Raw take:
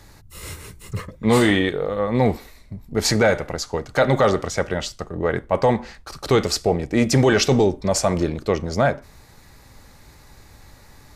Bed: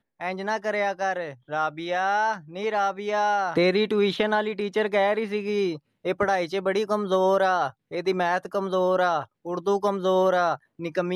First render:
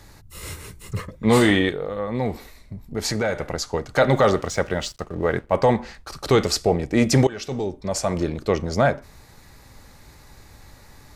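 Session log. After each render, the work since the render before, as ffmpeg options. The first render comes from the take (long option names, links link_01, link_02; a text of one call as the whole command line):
ffmpeg -i in.wav -filter_complex "[0:a]asettb=1/sr,asplit=3[link_01][link_02][link_03];[link_01]atrim=end=1.724[link_04];[link_02]atrim=start=1.72:end=3.4,asetpts=PTS-STARTPTS,afade=type=in:duration=0.004:curve=qsin,afade=type=out:start_time=1.676:duration=0.004:curve=qsin,acompressor=threshold=-31dB:ratio=1.5:attack=3.2:release=140:knee=1:detection=peak[link_05];[link_03]atrim=start=3.396[link_06];[link_04][link_05]acrossfade=duration=0.004:curve1=hsin:curve2=qsin[link_07];[link_07][link_06]acrossfade=duration=0.004:curve1=qsin:curve2=hsin,asettb=1/sr,asplit=3[link_08][link_09][link_10];[link_08]atrim=end=4.104[link_11];[link_09]atrim=start=4.1:end=5.56,asetpts=PTS-STARTPTS,afade=type=in:duration=0.004:curve=qsin,afade=type=out:start_time=1.456:duration=0.004:curve=qsin,aeval=exprs='sgn(val(0))*max(abs(val(0))-0.00355,0)':channel_layout=same[link_12];[link_10]atrim=start=5.556[link_13];[link_11][link_12]acrossfade=duration=0.004:curve1=hsin:curve2=qsin[link_14];[link_14][link_13]acrossfade=duration=0.004:curve1=qsin:curve2=hsin,asplit=2[link_15][link_16];[link_15]atrim=end=7.27,asetpts=PTS-STARTPTS,afade=type=out:start_time=7.266:duration=0.004:curve=hsin:silence=0.0891251[link_17];[link_16]atrim=start=7.27,asetpts=PTS-STARTPTS,afade=type=in:duration=1.3:silence=0.0891251[link_18];[link_17][link_18]concat=n=2:v=0:a=1" out.wav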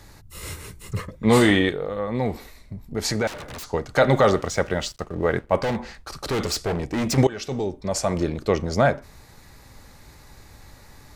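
ffmpeg -i in.wav -filter_complex "[0:a]asettb=1/sr,asplit=3[link_01][link_02][link_03];[link_01]atrim=end=3.274[link_04];[link_02]atrim=start=3.27:end=3.7,asetpts=PTS-STARTPTS,afade=type=in:duration=0.004:curve=qsin,afade=type=out:start_time=0.426:duration=0.004:curve=qsin,aeval=exprs='0.0282*(abs(mod(val(0)/0.0282+3,4)-2)-1)':channel_layout=same[link_05];[link_03]atrim=start=3.696[link_06];[link_04][link_05]acrossfade=duration=0.004:curve1=hsin:curve2=qsin[link_07];[link_07][link_06]acrossfade=duration=0.004:curve1=qsin:curve2=hsin,asettb=1/sr,asplit=3[link_08][link_09][link_10];[link_08]atrim=end=5.634[link_11];[link_09]atrim=start=5.63:end=7.18,asetpts=PTS-STARTPTS,afade=type=in:duration=0.004:curve=qsin,afade=type=out:start_time=1.546:duration=0.004:curve=qsin,volume=21.5dB,asoftclip=hard,volume=-21.5dB[link_12];[link_10]atrim=start=7.176[link_13];[link_11][link_12]acrossfade=duration=0.004:curve1=hsin:curve2=qsin[link_14];[link_14][link_13]acrossfade=duration=0.004:curve1=qsin:curve2=hsin" out.wav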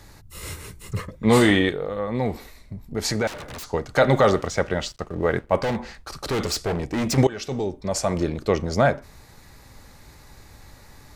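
ffmpeg -i in.wav -filter_complex "[0:a]asettb=1/sr,asplit=3[link_01][link_02][link_03];[link_01]atrim=end=4.474[link_04];[link_02]atrim=start=4.47:end=5.05,asetpts=PTS-STARTPTS,afade=type=in:duration=0.004:curve=qsin,afade=type=out:start_time=0.576:duration=0.004:curve=qsin,highshelf=frequency=9900:gain=-9[link_05];[link_03]atrim=start=5.046[link_06];[link_04][link_05]acrossfade=duration=0.004:curve1=hsin:curve2=qsin[link_07];[link_07][link_06]acrossfade=duration=0.004:curve1=qsin:curve2=hsin" out.wav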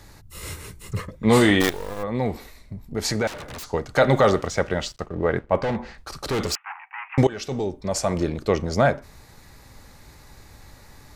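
ffmpeg -i in.wav -filter_complex "[0:a]asplit=3[link_01][link_02][link_03];[link_01]afade=type=out:start_time=1.6:duration=0.02[link_04];[link_02]acrusher=bits=4:dc=4:mix=0:aa=0.000001,afade=type=in:start_time=1.6:duration=0.02,afade=type=out:start_time=2.02:duration=0.02[link_05];[link_03]afade=type=in:start_time=2.02:duration=0.02[link_06];[link_04][link_05][link_06]amix=inputs=3:normalize=0,asettb=1/sr,asplit=3[link_07][link_08][link_09];[link_07]atrim=end=5.064[link_10];[link_08]atrim=start=5.06:end=5.98,asetpts=PTS-STARTPTS,afade=type=in:duration=0.004:curve=qsin,afade=type=out:start_time=0.916:duration=0.004:curve=qsin,lowpass=frequency=2800:poles=1[link_11];[link_09]atrim=start=5.976[link_12];[link_10][link_11]acrossfade=duration=0.004:curve1=hsin:curve2=qsin[link_13];[link_13][link_12]acrossfade=duration=0.004:curve1=qsin:curve2=hsin,asettb=1/sr,asplit=3[link_14][link_15][link_16];[link_14]atrim=end=6.554[link_17];[link_15]atrim=start=6.55:end=7.18,asetpts=PTS-STARTPTS,afade=type=in:duration=0.004:curve=qsin,afade=type=out:start_time=0.626:duration=0.004:curve=qsin,asuperpass=centerf=1500:order=20:qfactor=0.76[link_18];[link_16]atrim=start=7.176[link_19];[link_17][link_18]acrossfade=duration=0.004:curve1=hsin:curve2=qsin[link_20];[link_20][link_19]acrossfade=duration=0.004:curve1=qsin:curve2=hsin" out.wav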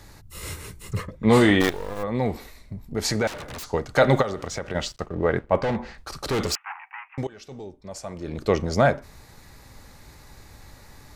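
ffmpeg -i in.wav -filter_complex "[0:a]asettb=1/sr,asplit=3[link_01][link_02][link_03];[link_01]atrim=end=1.034[link_04];[link_02]atrim=start=1.03:end=1.96,asetpts=PTS-STARTPTS,afade=type=in:duration=0.004:curve=qsin,afade=type=out:start_time=0.926:duration=0.004:curve=qsin,highshelf=frequency=4700:gain=-7[link_05];[link_03]atrim=start=1.956[link_06];[link_04][link_05]acrossfade=duration=0.004:curve1=hsin:curve2=qsin[link_07];[link_07][link_06]acrossfade=duration=0.004:curve1=qsin:curve2=hsin,asplit=3[link_08][link_09][link_10];[link_08]afade=type=out:start_time=4.21:duration=0.02[link_11];[link_09]acompressor=threshold=-26dB:ratio=6:attack=3.2:release=140:knee=1:detection=peak,afade=type=in:start_time=4.21:duration=0.02,afade=type=out:start_time=4.74:duration=0.02[link_12];[link_10]afade=type=in:start_time=4.74:duration=0.02[link_13];[link_11][link_12][link_13]amix=inputs=3:normalize=0,asplit=3[link_14][link_15][link_16];[link_14]atrim=end=7.08,asetpts=PTS-STARTPTS,afade=type=out:start_time=6.9:duration=0.18:silence=0.251189[link_17];[link_15]atrim=start=7.08:end=8.23,asetpts=PTS-STARTPTS,volume=-12dB[link_18];[link_16]atrim=start=8.23,asetpts=PTS-STARTPTS,afade=type=in:duration=0.18:silence=0.251189[link_19];[link_17][link_18][link_19]concat=n=3:v=0:a=1" out.wav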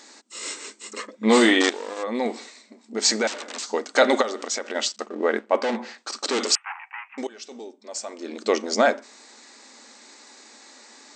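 ffmpeg -i in.wav -af "afftfilt=real='re*between(b*sr/4096,210,8500)':imag='im*between(b*sr/4096,210,8500)':win_size=4096:overlap=0.75,highshelf=frequency=3300:gain=10.5" out.wav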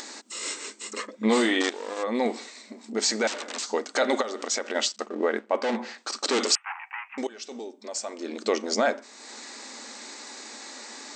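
ffmpeg -i in.wav -af "alimiter=limit=-13dB:level=0:latency=1:release=250,acompressor=mode=upward:threshold=-33dB:ratio=2.5" out.wav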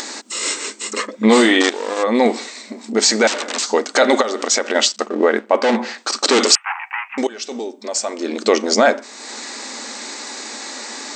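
ffmpeg -i in.wav -af "volume=11dB,alimiter=limit=-3dB:level=0:latency=1" out.wav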